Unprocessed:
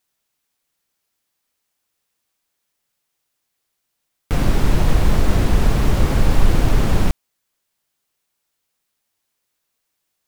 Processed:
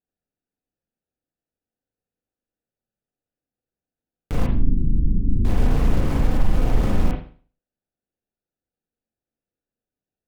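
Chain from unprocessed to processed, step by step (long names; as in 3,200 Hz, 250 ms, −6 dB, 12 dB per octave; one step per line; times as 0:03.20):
adaptive Wiener filter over 41 samples
0:04.46–0:05.45: inverse Chebyshev low-pass filter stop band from 610 Hz, stop band 40 dB
brickwall limiter −8 dBFS, peak gain reduction 6 dB
convolution reverb, pre-delay 36 ms, DRR −1 dB
level −5.5 dB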